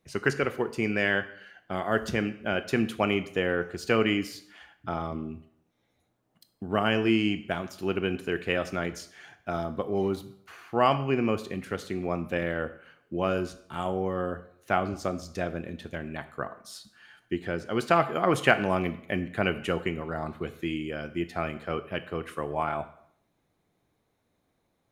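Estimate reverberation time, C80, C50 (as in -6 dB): 0.65 s, 17.0 dB, 14.5 dB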